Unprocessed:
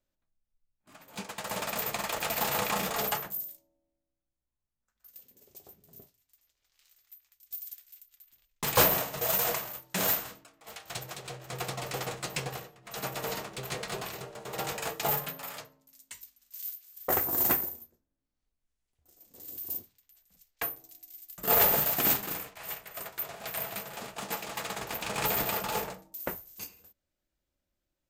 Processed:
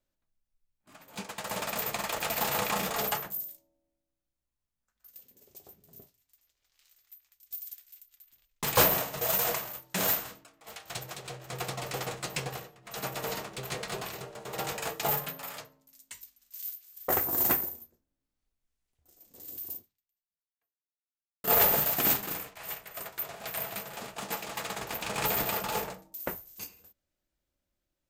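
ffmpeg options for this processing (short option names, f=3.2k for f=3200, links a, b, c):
-filter_complex "[0:a]asplit=2[a][b];[a]atrim=end=21.44,asetpts=PTS-STARTPTS,afade=t=out:st=19.65:d=1.79:c=exp[c];[b]atrim=start=21.44,asetpts=PTS-STARTPTS,afade=t=in:d=0.004:c=hsin[d];[c][d]concat=n=2:v=0:a=1"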